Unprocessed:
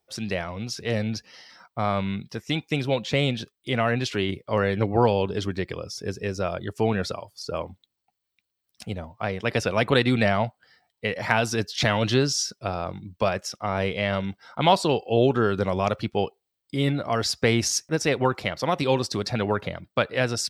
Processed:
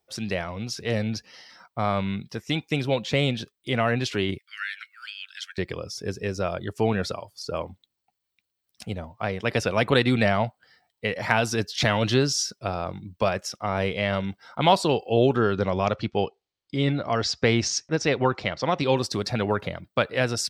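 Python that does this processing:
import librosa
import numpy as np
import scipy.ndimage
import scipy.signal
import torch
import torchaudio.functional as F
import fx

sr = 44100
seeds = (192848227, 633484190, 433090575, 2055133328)

y = fx.steep_highpass(x, sr, hz=1400.0, slope=96, at=(4.38, 5.58))
y = fx.lowpass(y, sr, hz=6500.0, slope=24, at=(15.36, 18.97))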